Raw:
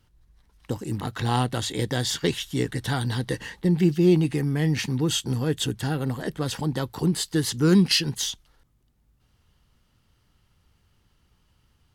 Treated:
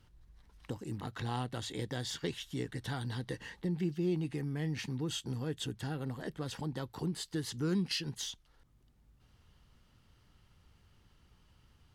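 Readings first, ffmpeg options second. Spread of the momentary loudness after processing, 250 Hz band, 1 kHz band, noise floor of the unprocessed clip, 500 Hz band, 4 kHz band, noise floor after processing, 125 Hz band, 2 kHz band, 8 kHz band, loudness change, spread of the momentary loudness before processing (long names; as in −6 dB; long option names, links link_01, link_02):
7 LU, −13.0 dB, −12.5 dB, −66 dBFS, −13.0 dB, −13.0 dB, −67 dBFS, −12.5 dB, −12.0 dB, −14.0 dB, −13.0 dB, 10 LU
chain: -af "highshelf=frequency=8600:gain=-7,acompressor=threshold=-56dB:ratio=1.5"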